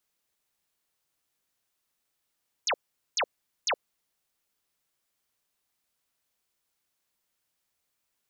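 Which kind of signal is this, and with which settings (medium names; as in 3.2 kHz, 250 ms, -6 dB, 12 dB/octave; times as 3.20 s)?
burst of laser zaps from 7.4 kHz, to 430 Hz, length 0.07 s sine, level -23.5 dB, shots 3, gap 0.43 s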